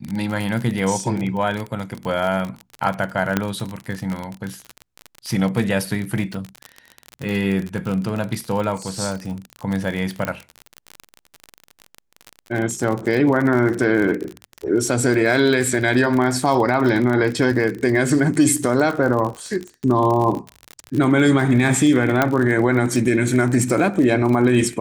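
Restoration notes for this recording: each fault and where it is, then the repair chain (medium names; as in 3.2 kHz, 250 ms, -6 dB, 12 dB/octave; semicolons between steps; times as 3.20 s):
crackle 40 per s -23 dBFS
3.37 s: pop -4 dBFS
10.25 s: pop -10 dBFS
22.22 s: pop -3 dBFS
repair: de-click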